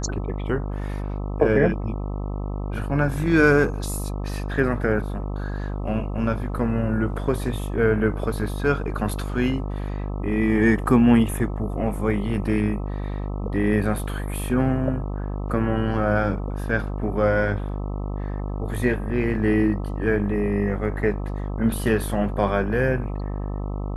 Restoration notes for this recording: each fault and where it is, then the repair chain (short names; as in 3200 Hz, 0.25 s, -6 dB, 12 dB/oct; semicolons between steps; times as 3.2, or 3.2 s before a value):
buzz 50 Hz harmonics 26 -28 dBFS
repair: de-hum 50 Hz, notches 26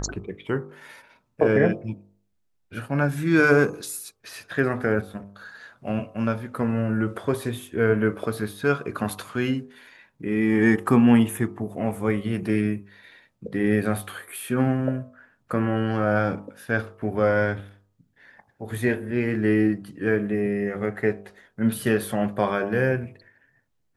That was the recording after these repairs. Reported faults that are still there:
none